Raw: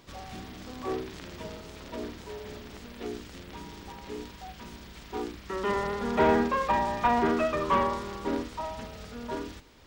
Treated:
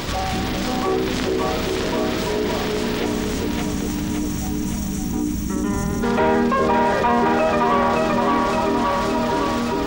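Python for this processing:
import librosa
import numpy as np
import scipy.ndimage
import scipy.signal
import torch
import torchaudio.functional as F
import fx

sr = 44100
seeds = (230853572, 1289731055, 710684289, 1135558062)

y = fx.spec_box(x, sr, start_s=3.06, length_s=2.97, low_hz=330.0, high_hz=5500.0, gain_db=-17)
y = fx.echo_split(y, sr, split_hz=580.0, low_ms=405, high_ms=567, feedback_pct=52, wet_db=-3.5)
y = fx.env_flatten(y, sr, amount_pct=70)
y = y * 10.0 ** (3.5 / 20.0)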